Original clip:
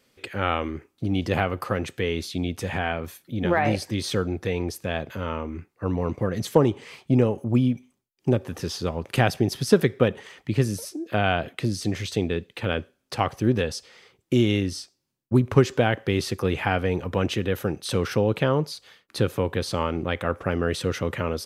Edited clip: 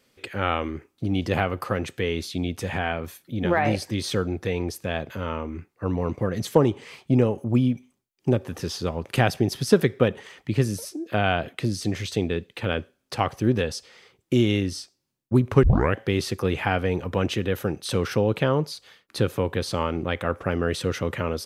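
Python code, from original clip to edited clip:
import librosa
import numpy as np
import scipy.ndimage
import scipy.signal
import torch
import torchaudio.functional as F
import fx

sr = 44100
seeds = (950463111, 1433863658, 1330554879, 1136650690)

y = fx.edit(x, sr, fx.tape_start(start_s=15.63, length_s=0.33), tone=tone)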